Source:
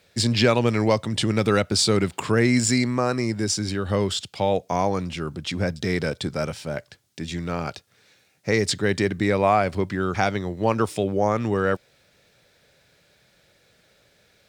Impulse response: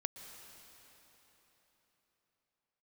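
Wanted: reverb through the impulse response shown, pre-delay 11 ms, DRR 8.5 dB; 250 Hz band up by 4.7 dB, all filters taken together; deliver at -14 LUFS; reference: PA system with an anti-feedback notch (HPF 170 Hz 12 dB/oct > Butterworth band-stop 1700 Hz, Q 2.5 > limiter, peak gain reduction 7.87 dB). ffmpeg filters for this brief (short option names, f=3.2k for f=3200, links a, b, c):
-filter_complex "[0:a]equalizer=f=250:t=o:g=7,asplit=2[a][b];[1:a]atrim=start_sample=2205,adelay=11[c];[b][c]afir=irnorm=-1:irlink=0,volume=-7.5dB[d];[a][d]amix=inputs=2:normalize=0,highpass=170,asuperstop=centerf=1700:order=8:qfactor=2.5,volume=9.5dB,alimiter=limit=-2.5dB:level=0:latency=1"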